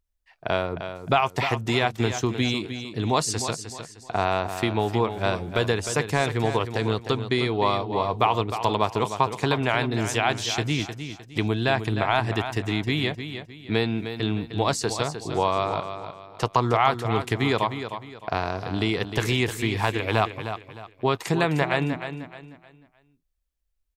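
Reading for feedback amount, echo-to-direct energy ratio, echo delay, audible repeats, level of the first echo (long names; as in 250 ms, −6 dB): 33%, −9.0 dB, 307 ms, 3, −9.5 dB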